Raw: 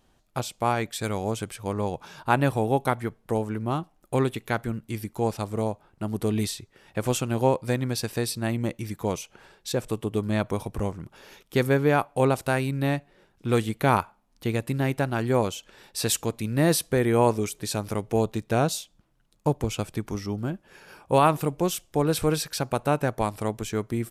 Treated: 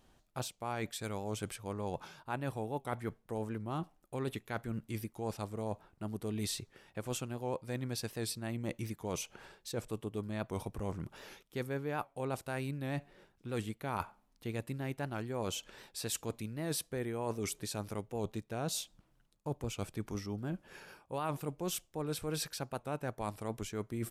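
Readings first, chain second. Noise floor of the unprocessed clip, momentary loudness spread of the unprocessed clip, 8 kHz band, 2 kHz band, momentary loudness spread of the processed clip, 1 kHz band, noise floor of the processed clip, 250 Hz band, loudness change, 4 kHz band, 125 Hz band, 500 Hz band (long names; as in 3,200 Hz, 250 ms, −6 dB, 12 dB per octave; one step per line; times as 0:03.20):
−65 dBFS, 10 LU, −9.0 dB, −13.0 dB, 6 LU, −14.5 dB, −72 dBFS, −12.5 dB, −13.0 dB, −9.0 dB, −12.5 dB, −14.0 dB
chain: reversed playback
downward compressor 5 to 1, threshold −33 dBFS, peak gain reduction 16.5 dB
reversed playback
wow of a warped record 78 rpm, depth 100 cents
level −2 dB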